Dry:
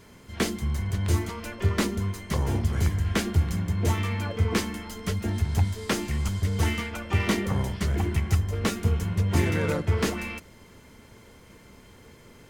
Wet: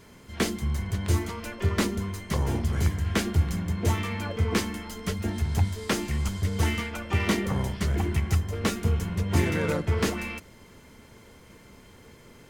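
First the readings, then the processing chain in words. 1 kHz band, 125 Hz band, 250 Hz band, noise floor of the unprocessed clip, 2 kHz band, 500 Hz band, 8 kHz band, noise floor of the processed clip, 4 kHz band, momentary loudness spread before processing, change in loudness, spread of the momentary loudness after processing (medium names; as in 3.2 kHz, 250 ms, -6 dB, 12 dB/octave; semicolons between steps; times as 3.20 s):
0.0 dB, -1.5 dB, 0.0 dB, -52 dBFS, 0.0 dB, 0.0 dB, 0.0 dB, -52 dBFS, 0.0 dB, 5 LU, -0.5 dB, 6 LU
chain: hum notches 50/100 Hz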